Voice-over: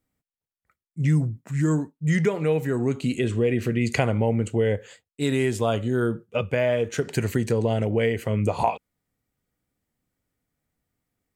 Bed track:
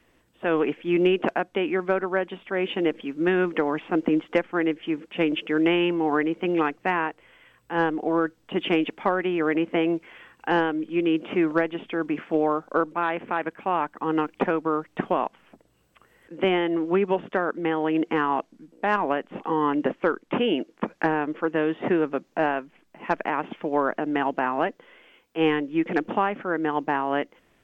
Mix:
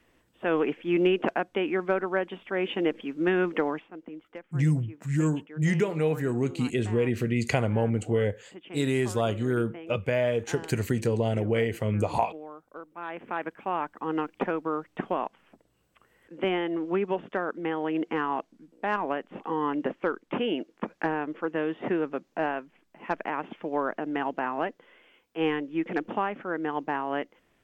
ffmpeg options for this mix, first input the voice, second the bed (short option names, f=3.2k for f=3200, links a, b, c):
-filter_complex "[0:a]adelay=3550,volume=-3dB[a];[1:a]volume=12.5dB,afade=t=out:st=3.66:d=0.23:silence=0.133352,afade=t=in:st=12.89:d=0.49:silence=0.177828[b];[a][b]amix=inputs=2:normalize=0"